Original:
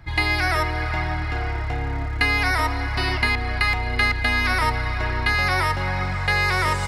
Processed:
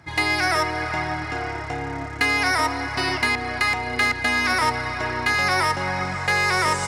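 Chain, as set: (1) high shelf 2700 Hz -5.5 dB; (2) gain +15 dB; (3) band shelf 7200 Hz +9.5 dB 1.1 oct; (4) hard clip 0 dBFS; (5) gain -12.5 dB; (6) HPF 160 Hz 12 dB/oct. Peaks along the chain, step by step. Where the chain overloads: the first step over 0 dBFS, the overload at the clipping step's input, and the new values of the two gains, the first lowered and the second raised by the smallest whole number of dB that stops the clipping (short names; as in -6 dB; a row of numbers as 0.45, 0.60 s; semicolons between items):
-8.5, +6.5, +6.5, 0.0, -12.5, -8.5 dBFS; step 2, 6.5 dB; step 2 +8 dB, step 5 -5.5 dB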